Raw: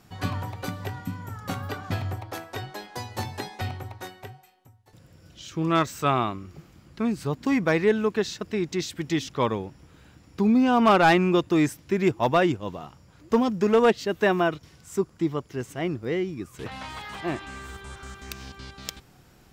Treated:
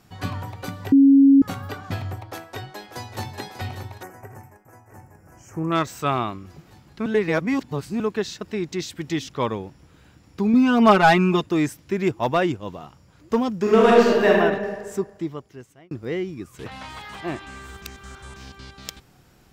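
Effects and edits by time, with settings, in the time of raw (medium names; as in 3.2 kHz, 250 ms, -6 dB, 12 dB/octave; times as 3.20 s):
0.92–1.42 s: bleep 275 Hz -9 dBFS
2.29–3.38 s: echo throw 590 ms, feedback 75%, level -10 dB
4.03–5.72 s: Butterworth band-stop 3.7 kHz, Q 0.76
7.06–8.00 s: reverse
10.53–11.46 s: comb 4.7 ms, depth 89%
13.62–14.29 s: reverb throw, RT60 1.5 s, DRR -5 dB
14.95–15.91 s: fade out
17.82–18.36 s: reverse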